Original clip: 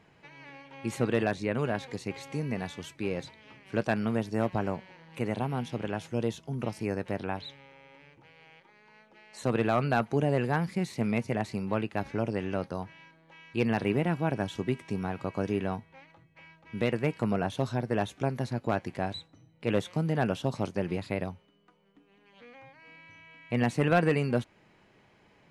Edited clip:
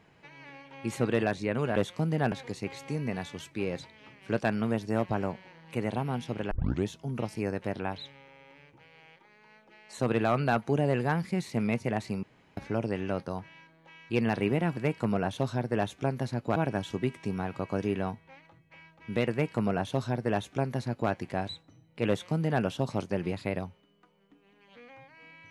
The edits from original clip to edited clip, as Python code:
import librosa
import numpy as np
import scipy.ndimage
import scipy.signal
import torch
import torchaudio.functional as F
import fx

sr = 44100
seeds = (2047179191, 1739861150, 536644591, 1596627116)

y = fx.edit(x, sr, fx.tape_start(start_s=5.95, length_s=0.37),
    fx.room_tone_fill(start_s=11.67, length_s=0.34),
    fx.duplicate(start_s=16.96, length_s=1.79, to_s=14.21),
    fx.duplicate(start_s=19.73, length_s=0.56, to_s=1.76), tone=tone)